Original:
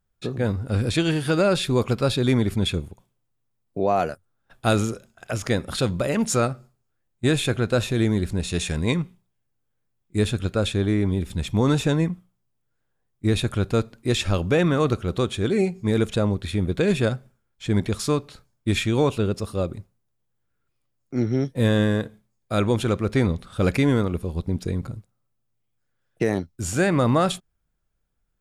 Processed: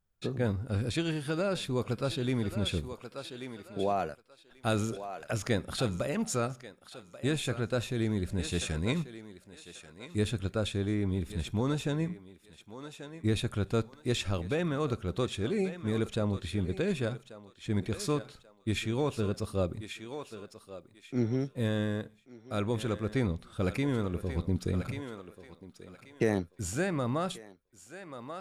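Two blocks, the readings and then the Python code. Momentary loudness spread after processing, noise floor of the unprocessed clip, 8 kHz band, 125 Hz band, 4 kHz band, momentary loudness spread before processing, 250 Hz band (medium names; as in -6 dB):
16 LU, -74 dBFS, -8.5 dB, -9.0 dB, -8.5 dB, 10 LU, -9.0 dB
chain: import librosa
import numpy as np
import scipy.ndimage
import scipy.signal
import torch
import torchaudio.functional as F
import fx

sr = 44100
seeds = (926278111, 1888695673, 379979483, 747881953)

y = fx.echo_thinned(x, sr, ms=1136, feedback_pct=29, hz=410.0, wet_db=-12.0)
y = fx.rider(y, sr, range_db=4, speed_s=0.5)
y = y * librosa.db_to_amplitude(-8.5)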